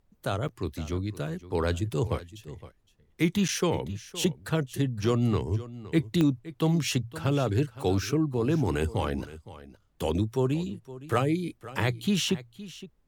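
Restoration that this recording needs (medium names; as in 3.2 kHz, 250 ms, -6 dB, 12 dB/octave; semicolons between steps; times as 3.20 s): de-click; interpolate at 0.48/3.48 s, 7.7 ms; expander -52 dBFS, range -21 dB; inverse comb 515 ms -16.5 dB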